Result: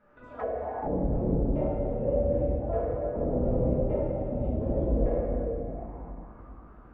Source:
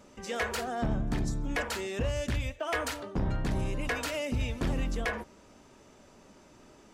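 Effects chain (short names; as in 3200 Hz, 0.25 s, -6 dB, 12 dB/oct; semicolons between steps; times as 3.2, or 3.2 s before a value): trilling pitch shifter +4 st, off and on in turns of 0.164 s; level quantiser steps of 16 dB; shoebox room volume 150 m³, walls hard, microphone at 1.4 m; envelope low-pass 550–1600 Hz down, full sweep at -24 dBFS; gain -7 dB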